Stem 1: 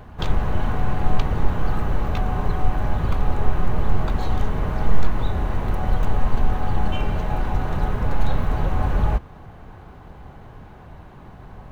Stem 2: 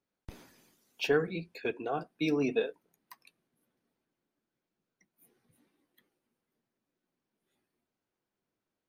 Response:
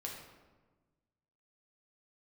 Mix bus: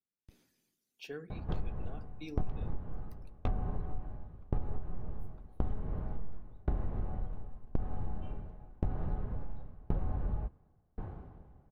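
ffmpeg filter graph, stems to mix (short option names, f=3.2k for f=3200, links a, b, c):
-filter_complex "[0:a]lowpass=f=3.3k:p=1,tiltshelf=f=1.1k:g=7.5,aeval=exprs='val(0)*pow(10,-38*if(lt(mod(0.93*n/s,1),2*abs(0.93)/1000),1-mod(0.93*n/s,1)/(2*abs(0.93)/1000),(mod(0.93*n/s,1)-2*abs(0.93)/1000)/(1-2*abs(0.93)/1000))/20)':c=same,adelay=1300,volume=-4dB[a];[1:a]equalizer=f=920:t=o:w=2.3:g=-9,volume=-12dB[b];[a][b]amix=inputs=2:normalize=0,bandreject=f=970:w=25,asoftclip=type=tanh:threshold=-6dB,acompressor=threshold=-28dB:ratio=8"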